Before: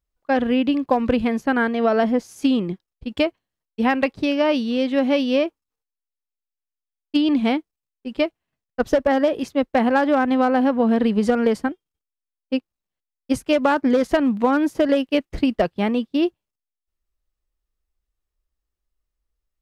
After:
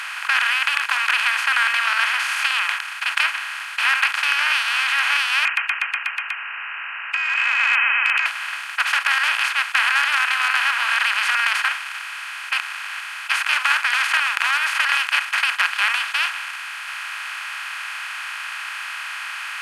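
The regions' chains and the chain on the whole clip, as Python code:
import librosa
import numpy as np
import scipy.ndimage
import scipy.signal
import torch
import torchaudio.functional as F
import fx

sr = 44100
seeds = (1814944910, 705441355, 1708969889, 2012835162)

y = fx.chain(x, sr, fx.freq_invert(carrier_hz=2800),
    fx.echo_feedback(ms=122, feedback_pct=58, wet_db=-8),
    fx.over_compress(threshold_db=-29.0, ratio=-1.0), at=(5.45, 8.26))
y = fx.bin_compress(y, sr, power=0.2)
y = scipy.signal.sosfilt(scipy.signal.butter(6, 1200.0, 'highpass', fs=sr, output='sos'), y)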